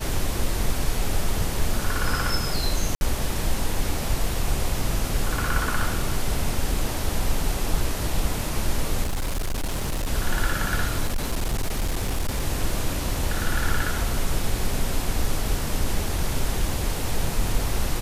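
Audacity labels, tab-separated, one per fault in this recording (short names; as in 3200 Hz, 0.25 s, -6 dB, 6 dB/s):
2.950000	3.010000	gap 61 ms
9.020000	10.080000	clipped -22 dBFS
11.050000	12.440000	clipped -20 dBFS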